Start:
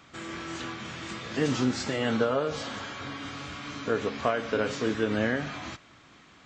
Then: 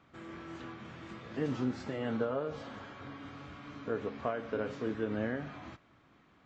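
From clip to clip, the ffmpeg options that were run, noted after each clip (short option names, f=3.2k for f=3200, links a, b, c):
-af "lowpass=f=1.2k:p=1,volume=-6.5dB"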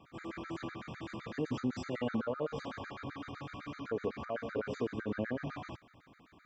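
-af "alimiter=level_in=5.5dB:limit=-24dB:level=0:latency=1:release=94,volume=-5.5dB,afftfilt=real='re*gt(sin(2*PI*7.9*pts/sr)*(1-2*mod(floor(b*sr/1024/1200),2)),0)':imag='im*gt(sin(2*PI*7.9*pts/sr)*(1-2*mod(floor(b*sr/1024/1200),2)),0)':win_size=1024:overlap=0.75,volume=6dB"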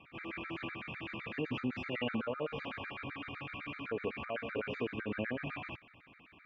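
-af "lowpass=f=2.6k:t=q:w=6.2,volume=-2dB"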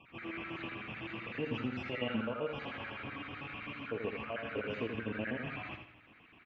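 -af "flanger=delay=8.2:depth=1.9:regen=75:speed=0.77:shape=triangular,aecho=1:1:82|164|246|328:0.473|0.156|0.0515|0.017,volume=3.5dB"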